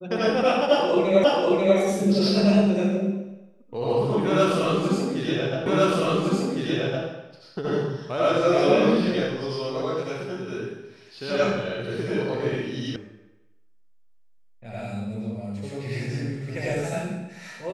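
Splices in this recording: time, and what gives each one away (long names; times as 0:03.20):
0:01.24: the same again, the last 0.54 s
0:05.66: the same again, the last 1.41 s
0:12.96: cut off before it has died away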